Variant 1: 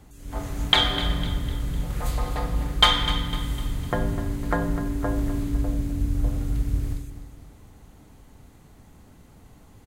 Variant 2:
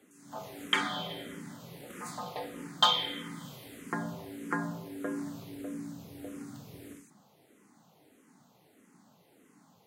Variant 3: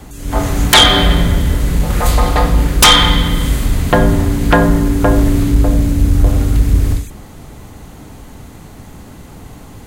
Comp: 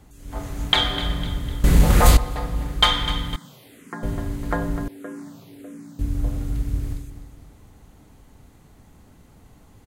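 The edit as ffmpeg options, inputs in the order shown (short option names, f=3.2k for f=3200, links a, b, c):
-filter_complex "[1:a]asplit=2[a][b];[0:a]asplit=4[c][d][e][f];[c]atrim=end=1.642[g];[2:a]atrim=start=1.638:end=2.172[h];[d]atrim=start=2.168:end=3.362[i];[a]atrim=start=3.358:end=4.032[j];[e]atrim=start=4.028:end=4.882[k];[b]atrim=start=4.878:end=5.992[l];[f]atrim=start=5.988[m];[g][h]acrossfade=d=0.004:c1=hsin:c2=hsin[n];[n][i]acrossfade=d=0.004:c1=hsin:c2=hsin[o];[o][j]acrossfade=d=0.004:c1=hsin:c2=hsin[p];[p][k]acrossfade=d=0.004:c1=hsin:c2=hsin[q];[q][l]acrossfade=d=0.004:c1=hsin:c2=hsin[r];[r][m]acrossfade=d=0.004:c1=hsin:c2=hsin"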